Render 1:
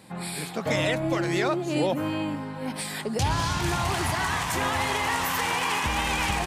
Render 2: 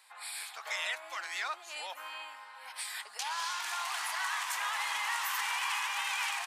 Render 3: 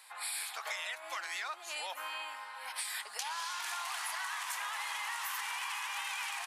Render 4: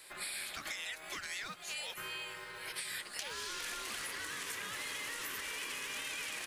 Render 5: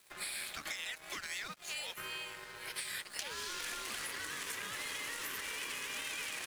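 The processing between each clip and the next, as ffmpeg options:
ffmpeg -i in.wav -af "highpass=frequency=960:width=0.5412,highpass=frequency=960:width=1.3066,volume=-5.5dB" out.wav
ffmpeg -i in.wav -af "acompressor=threshold=-40dB:ratio=6,equalizer=frequency=11000:width=2.4:gain=5,volume=4dB" out.wav
ffmpeg -i in.wav -filter_complex "[0:a]acrossover=split=1000|4000[link_01][link_02][link_03];[link_01]acompressor=threshold=-59dB:ratio=4[link_04];[link_02]acompressor=threshold=-43dB:ratio=4[link_05];[link_03]acompressor=threshold=-46dB:ratio=4[link_06];[link_04][link_05][link_06]amix=inputs=3:normalize=0,acrossover=split=1000|1500|3400[link_07][link_08][link_09][link_10];[link_07]acrusher=samples=31:mix=1:aa=0.000001[link_11];[link_11][link_08][link_09][link_10]amix=inputs=4:normalize=0,volume=2.5dB" out.wav
ffmpeg -i in.wav -af "aeval=exprs='sgn(val(0))*max(abs(val(0))-0.00224,0)':channel_layout=same,volume=2dB" out.wav

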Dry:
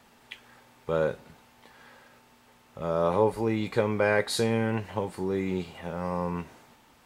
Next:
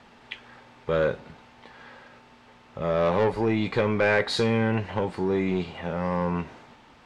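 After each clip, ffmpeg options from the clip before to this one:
ffmpeg -i in.wav -filter_complex "[0:a]lowpass=4300,acrossover=split=1800[link_01][link_02];[link_01]asoftclip=type=tanh:threshold=-23.5dB[link_03];[link_03][link_02]amix=inputs=2:normalize=0,volume=6dB" out.wav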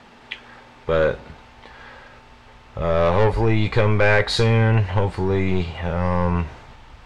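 ffmpeg -i in.wav -af "asubboost=boost=10:cutoff=73,volume=5.5dB" out.wav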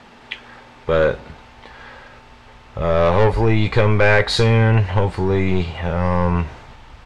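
ffmpeg -i in.wav -af "aresample=32000,aresample=44100,volume=2.5dB" out.wav

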